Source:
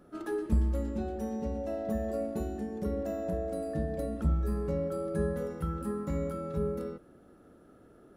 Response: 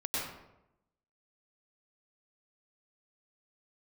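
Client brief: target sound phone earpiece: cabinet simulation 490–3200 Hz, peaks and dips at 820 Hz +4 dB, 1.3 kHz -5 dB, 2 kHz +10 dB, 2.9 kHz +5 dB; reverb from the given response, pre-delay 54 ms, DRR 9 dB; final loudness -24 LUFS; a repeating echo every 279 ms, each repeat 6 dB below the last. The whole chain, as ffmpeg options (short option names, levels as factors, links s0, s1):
-filter_complex "[0:a]aecho=1:1:279|558|837|1116|1395|1674:0.501|0.251|0.125|0.0626|0.0313|0.0157,asplit=2[s0][s1];[1:a]atrim=start_sample=2205,adelay=54[s2];[s1][s2]afir=irnorm=-1:irlink=0,volume=0.188[s3];[s0][s3]amix=inputs=2:normalize=0,highpass=490,equalizer=f=820:t=q:w=4:g=4,equalizer=f=1300:t=q:w=4:g=-5,equalizer=f=2000:t=q:w=4:g=10,equalizer=f=2900:t=q:w=4:g=5,lowpass=f=3200:w=0.5412,lowpass=f=3200:w=1.3066,volume=4.73"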